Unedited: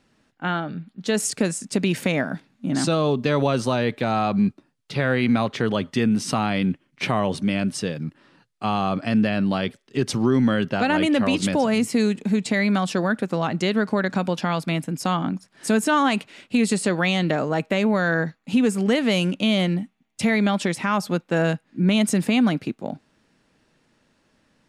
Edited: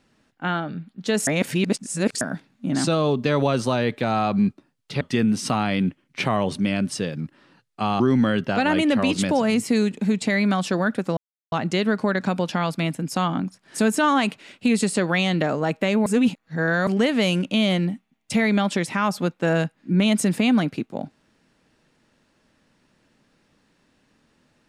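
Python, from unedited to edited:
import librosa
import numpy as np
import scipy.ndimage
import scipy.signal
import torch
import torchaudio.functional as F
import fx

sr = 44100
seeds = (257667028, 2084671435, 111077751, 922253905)

y = fx.edit(x, sr, fx.reverse_span(start_s=1.27, length_s=0.94),
    fx.cut(start_s=5.01, length_s=0.83),
    fx.cut(start_s=8.83, length_s=1.41),
    fx.insert_silence(at_s=13.41, length_s=0.35),
    fx.reverse_span(start_s=17.95, length_s=0.81), tone=tone)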